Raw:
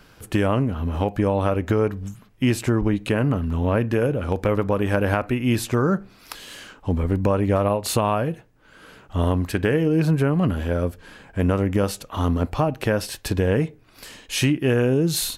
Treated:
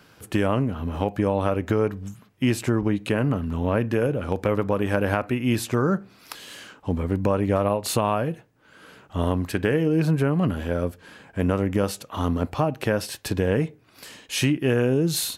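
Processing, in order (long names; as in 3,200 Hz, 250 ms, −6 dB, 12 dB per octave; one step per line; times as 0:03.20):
high-pass filter 88 Hz
level −1.5 dB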